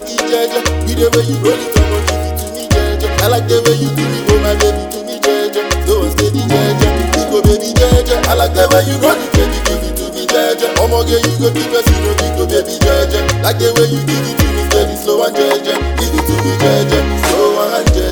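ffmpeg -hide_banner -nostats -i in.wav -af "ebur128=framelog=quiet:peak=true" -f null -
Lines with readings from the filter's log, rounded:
Integrated loudness:
  I:         -12.6 LUFS
  Threshold: -22.6 LUFS
Loudness range:
  LRA:         1.9 LU
  Threshold: -32.6 LUFS
  LRA low:   -13.2 LUFS
  LRA high:  -11.3 LUFS
True peak:
  Peak:       -0.1 dBFS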